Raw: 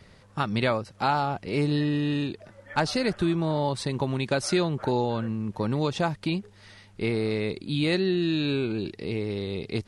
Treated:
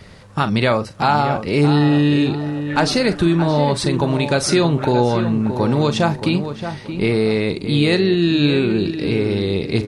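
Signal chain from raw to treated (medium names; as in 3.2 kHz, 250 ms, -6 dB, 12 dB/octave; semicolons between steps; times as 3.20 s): in parallel at +2 dB: peak limiter -21 dBFS, peak gain reduction 9.5 dB; on the sum: doubling 41 ms -12.5 dB; filtered feedback delay 624 ms, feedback 31%, low-pass 2.2 kHz, level -9 dB; trim +3.5 dB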